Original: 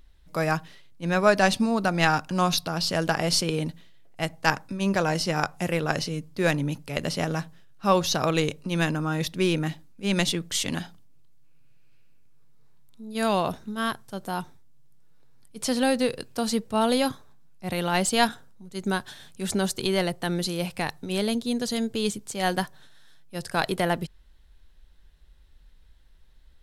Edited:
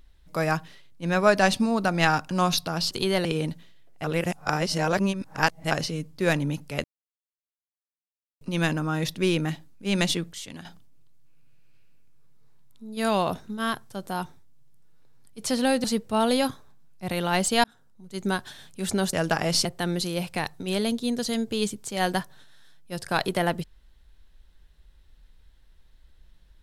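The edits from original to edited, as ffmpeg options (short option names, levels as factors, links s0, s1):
-filter_complex "[0:a]asplit=13[s0][s1][s2][s3][s4][s5][s6][s7][s8][s9][s10][s11][s12];[s0]atrim=end=2.912[s13];[s1]atrim=start=19.738:end=20.082[s14];[s2]atrim=start=3.428:end=4.222[s15];[s3]atrim=start=4.218:end=5.892,asetpts=PTS-STARTPTS,areverse[s16];[s4]atrim=start=5.888:end=7.02,asetpts=PTS-STARTPTS,afade=t=out:st=1.128:d=0.004:c=hsin[s17];[s5]atrim=start=7.02:end=8.59,asetpts=PTS-STARTPTS,volume=0[s18];[s6]atrim=start=8.59:end=10.512,asetpts=PTS-STARTPTS,afade=t=in:d=0.004:c=hsin[s19];[s7]atrim=start=10.508:end=10.832,asetpts=PTS-STARTPTS,volume=0.266[s20];[s8]atrim=start=10.828:end=16.022[s21];[s9]atrim=start=16.448:end=18.25,asetpts=PTS-STARTPTS,afade=t=out:st=1.798:d=0.004:c=hsin[s22];[s10]atrim=start=18.25:end=19.742,asetpts=PTS-STARTPTS,afade=t=in:d=0.51[s23];[s11]atrim=start=2.908:end=3.432[s24];[s12]atrim=start=20.078[s25];[s13][s14]acrossfade=d=0.004:c1=hsin:c2=hsin[s26];[s26][s15]acrossfade=d=0.004:c1=hsin:c2=hsin[s27];[s27][s16]acrossfade=d=0.004:c1=hsin:c2=hsin[s28];[s17][s18][s19]concat=n=3:v=0:a=1[s29];[s28][s29]acrossfade=d=0.004:c1=hsin:c2=hsin[s30];[s30][s20]acrossfade=d=0.004:c1=hsin:c2=hsin[s31];[s31][s21]acrossfade=d=0.004:c1=hsin:c2=hsin[s32];[s22][s23]concat=n=2:v=0:a=1[s33];[s32][s33]acrossfade=d=0.004:c1=hsin:c2=hsin[s34];[s34][s24]acrossfade=d=0.004:c1=hsin:c2=hsin[s35];[s35][s25]acrossfade=d=0.004:c1=hsin:c2=hsin"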